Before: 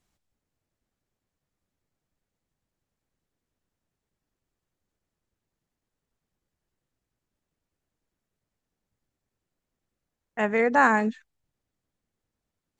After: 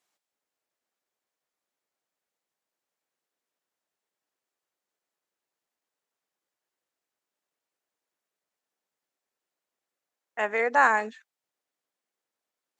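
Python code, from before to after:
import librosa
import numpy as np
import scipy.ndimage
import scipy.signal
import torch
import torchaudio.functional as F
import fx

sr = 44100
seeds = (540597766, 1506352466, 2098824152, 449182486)

y = scipy.signal.sosfilt(scipy.signal.butter(2, 520.0, 'highpass', fs=sr, output='sos'), x)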